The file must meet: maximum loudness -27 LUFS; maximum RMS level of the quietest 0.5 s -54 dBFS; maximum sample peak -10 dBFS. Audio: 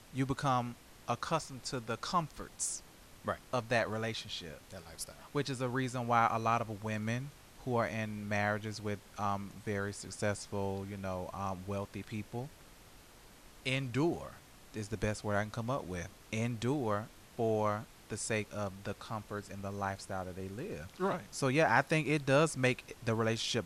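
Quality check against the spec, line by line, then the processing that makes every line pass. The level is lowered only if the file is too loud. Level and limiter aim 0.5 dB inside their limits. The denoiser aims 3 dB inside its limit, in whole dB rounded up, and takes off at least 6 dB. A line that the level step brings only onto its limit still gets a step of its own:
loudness -35.5 LUFS: OK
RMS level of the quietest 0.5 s -57 dBFS: OK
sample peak -13.5 dBFS: OK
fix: none

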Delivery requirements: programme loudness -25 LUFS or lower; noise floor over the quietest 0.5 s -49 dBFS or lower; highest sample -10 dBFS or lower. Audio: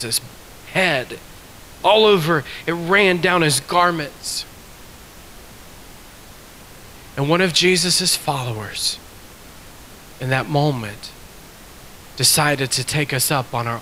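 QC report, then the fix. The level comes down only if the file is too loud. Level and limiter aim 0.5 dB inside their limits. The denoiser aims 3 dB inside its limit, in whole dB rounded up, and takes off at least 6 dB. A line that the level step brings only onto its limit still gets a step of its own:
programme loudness -17.5 LUFS: fail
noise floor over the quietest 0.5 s -41 dBFS: fail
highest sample -2.5 dBFS: fail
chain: denoiser 6 dB, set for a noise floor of -41 dBFS; gain -8 dB

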